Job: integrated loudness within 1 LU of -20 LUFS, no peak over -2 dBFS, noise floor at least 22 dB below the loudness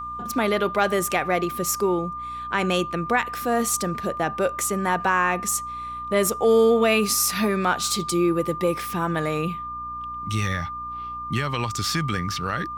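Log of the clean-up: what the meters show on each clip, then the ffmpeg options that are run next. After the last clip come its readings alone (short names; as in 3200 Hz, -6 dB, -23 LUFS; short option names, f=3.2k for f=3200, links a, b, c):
hum 60 Hz; harmonics up to 300 Hz; hum level -44 dBFS; steady tone 1200 Hz; tone level -30 dBFS; loudness -23.5 LUFS; peak -9.0 dBFS; loudness target -20.0 LUFS
-> -af "bandreject=f=60:t=h:w=4,bandreject=f=120:t=h:w=4,bandreject=f=180:t=h:w=4,bandreject=f=240:t=h:w=4,bandreject=f=300:t=h:w=4"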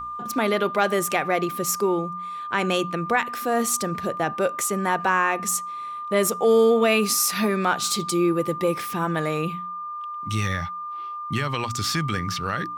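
hum none; steady tone 1200 Hz; tone level -30 dBFS
-> -af "bandreject=f=1.2k:w=30"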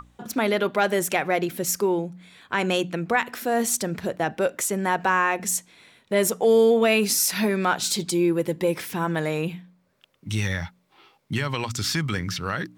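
steady tone none; loudness -23.5 LUFS; peak -9.0 dBFS; loudness target -20.0 LUFS
-> -af "volume=3.5dB"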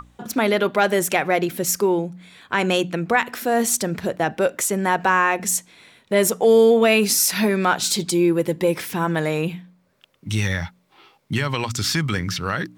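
loudness -20.0 LUFS; peak -5.5 dBFS; noise floor -61 dBFS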